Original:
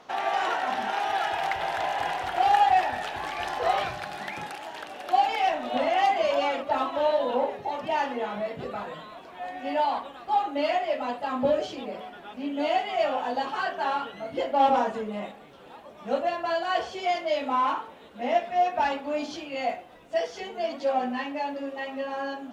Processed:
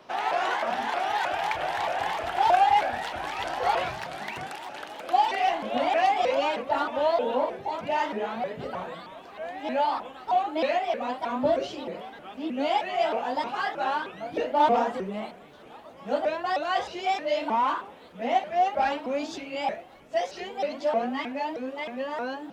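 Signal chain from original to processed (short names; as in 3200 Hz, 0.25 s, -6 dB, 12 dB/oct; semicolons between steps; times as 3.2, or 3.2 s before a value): shaped vibrato saw up 3.2 Hz, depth 250 cents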